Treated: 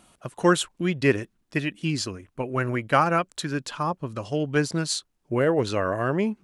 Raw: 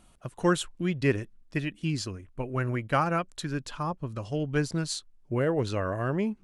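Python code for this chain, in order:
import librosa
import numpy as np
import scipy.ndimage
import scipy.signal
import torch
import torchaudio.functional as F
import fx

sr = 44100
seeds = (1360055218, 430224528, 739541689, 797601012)

y = fx.highpass(x, sr, hz=200.0, slope=6)
y = y * librosa.db_to_amplitude(6.0)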